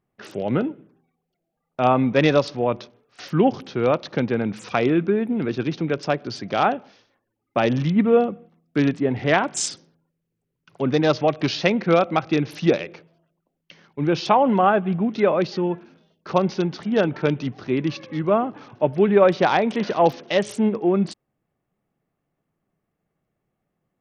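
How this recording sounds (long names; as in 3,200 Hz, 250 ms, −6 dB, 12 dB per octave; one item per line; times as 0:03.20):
SBC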